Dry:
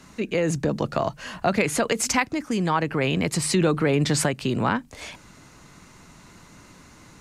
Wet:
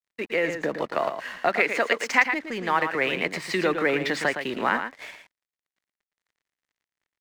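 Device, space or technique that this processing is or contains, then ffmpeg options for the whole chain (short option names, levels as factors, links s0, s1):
pocket radio on a weak battery: -filter_complex "[0:a]highpass=360,lowpass=3800,aeval=exprs='sgn(val(0))*max(abs(val(0))-0.00562,0)':c=same,equalizer=f=1900:t=o:w=0.47:g=9,agate=range=0.398:threshold=0.00562:ratio=16:detection=peak,asettb=1/sr,asplit=3[s0][s1][s2];[s0]atrim=end=1.494[s3];[s1]atrim=start=1.49:end=2.09,asetpts=PTS-STARTPTS,afade=t=in:d=0.004:c=qsin,afade=t=out:st=0.596:d=0.004:c=qsin,highpass=210[s4];[s2]atrim=start=2.086[s5];[s3][s4]acrossfade=d=0.004:c1=hsin:c2=qsin[s6];[s6][s5]acrossfade=d=0.004:c1=qsin:c2=hsin,aecho=1:1:113:0.398"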